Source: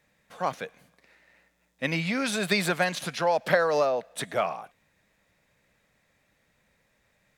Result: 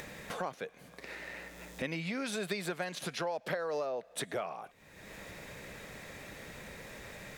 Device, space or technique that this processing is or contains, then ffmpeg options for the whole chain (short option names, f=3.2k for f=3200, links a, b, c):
upward and downward compression: -af "equalizer=f=390:t=o:w=0.71:g=5.5,acompressor=mode=upward:threshold=-37dB:ratio=2.5,acompressor=threshold=-41dB:ratio=4,volume=4.5dB"